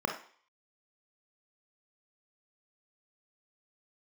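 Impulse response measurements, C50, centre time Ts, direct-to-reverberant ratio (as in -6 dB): 7.5 dB, 21 ms, 3.0 dB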